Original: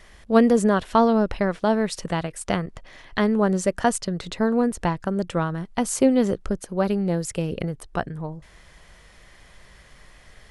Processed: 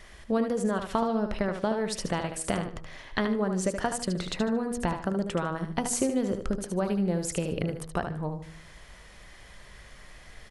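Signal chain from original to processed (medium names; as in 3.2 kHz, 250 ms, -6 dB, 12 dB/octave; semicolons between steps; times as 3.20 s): compression 6:1, threshold -24 dBFS, peak gain reduction 13 dB; de-hum 80.44 Hz, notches 17; on a send: feedback delay 75 ms, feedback 28%, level -7.5 dB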